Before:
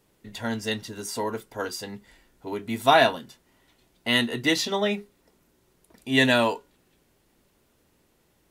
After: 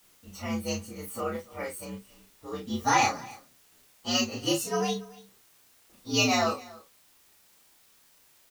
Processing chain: frequency axis rescaled in octaves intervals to 119%; gate with hold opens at -55 dBFS; word length cut 10-bit, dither triangular; doubling 32 ms -4 dB; on a send: delay 282 ms -21.5 dB; on the sum: trim -2.5 dB

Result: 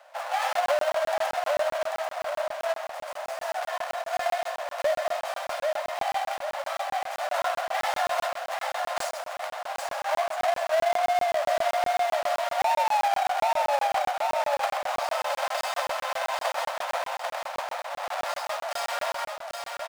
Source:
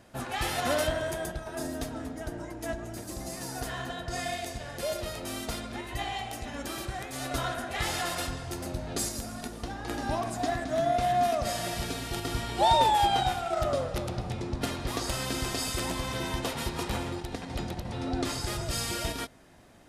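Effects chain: square wave that keeps the level; steep high-pass 560 Hz 96 dB/octave; tilt EQ -3.5 dB/octave; on a send: feedback delay 791 ms, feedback 39%, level -5 dB; on the sum: compression 10:1, threshold -23 dBFS, peak gain reduction 9.5 dB; crackling interface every 0.13 s, samples 1024, zero, from 0.53 s; trim +3 dB

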